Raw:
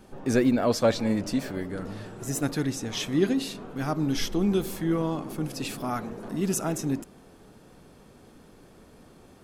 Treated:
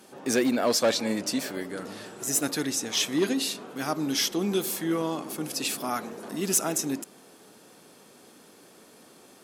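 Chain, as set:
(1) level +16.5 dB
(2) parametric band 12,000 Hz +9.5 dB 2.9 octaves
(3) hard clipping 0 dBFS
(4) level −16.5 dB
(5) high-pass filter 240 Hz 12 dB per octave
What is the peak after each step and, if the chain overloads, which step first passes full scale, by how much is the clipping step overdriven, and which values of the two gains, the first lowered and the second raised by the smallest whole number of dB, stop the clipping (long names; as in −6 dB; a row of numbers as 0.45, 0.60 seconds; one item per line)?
+5.5, +9.0, 0.0, −16.5, −11.0 dBFS
step 1, 9.0 dB
step 1 +7.5 dB, step 4 −7.5 dB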